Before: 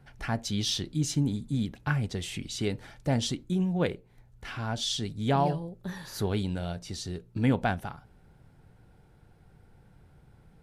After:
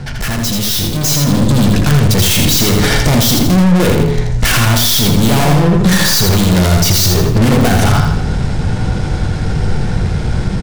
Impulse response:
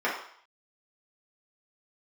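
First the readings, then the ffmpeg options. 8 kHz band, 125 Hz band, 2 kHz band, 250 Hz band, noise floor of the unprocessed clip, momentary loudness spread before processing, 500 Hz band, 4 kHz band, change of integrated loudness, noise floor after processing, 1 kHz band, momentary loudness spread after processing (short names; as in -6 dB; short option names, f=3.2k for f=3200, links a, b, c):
+23.5 dB, +20.5 dB, +20.5 dB, +18.5 dB, -59 dBFS, 11 LU, +17.0 dB, +20.0 dB, +18.5 dB, -17 dBFS, +16.0 dB, 8 LU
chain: -filter_complex "[0:a]lowpass=f=6.5k:w=0.5412,lowpass=f=6.5k:w=1.3066,highshelf=f=3.6k:g=8.5,asplit=2[a][b];[b]adelay=20,volume=-13.5dB[c];[a][c]amix=inputs=2:normalize=0,bandreject=f=53.26:t=h:w=4,bandreject=f=106.52:t=h:w=4,bandreject=f=159.78:t=h:w=4,bandreject=f=213.04:t=h:w=4,bandreject=f=266.3:t=h:w=4,bandreject=f=319.56:t=h:w=4,bandreject=f=372.82:t=h:w=4,bandreject=f=426.08:t=h:w=4,acompressor=threshold=-31dB:ratio=3,aeval=exprs='(tanh(316*val(0)+0.25)-tanh(0.25))/316':c=same,lowshelf=f=320:g=8.5,aecho=1:1:82|164|246|328:0.631|0.221|0.0773|0.0271,dynaudnorm=f=880:g=3:m=9.5dB,asplit=2[d][e];[1:a]atrim=start_sample=2205[f];[e][f]afir=irnorm=-1:irlink=0,volume=-20dB[g];[d][g]amix=inputs=2:normalize=0,crystalizer=i=1.5:c=0,alimiter=level_in=27dB:limit=-1dB:release=50:level=0:latency=1,volume=-1dB"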